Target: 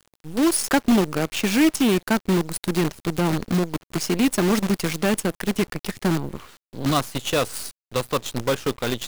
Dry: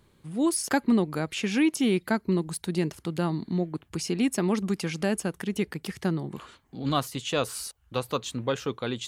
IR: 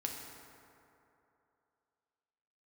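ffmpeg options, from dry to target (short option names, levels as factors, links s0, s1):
-af "acontrast=32,aeval=exprs='0.447*(cos(1*acos(clip(val(0)/0.447,-1,1)))-cos(1*PI/2))+0.0178*(cos(2*acos(clip(val(0)/0.447,-1,1)))-cos(2*PI/2))+0.112*(cos(4*acos(clip(val(0)/0.447,-1,1)))-cos(4*PI/2))+0.00398*(cos(5*acos(clip(val(0)/0.447,-1,1)))-cos(5*PI/2))+0.0708*(cos(6*acos(clip(val(0)/0.447,-1,1)))-cos(6*PI/2))':c=same,acrusher=bits=5:dc=4:mix=0:aa=0.000001"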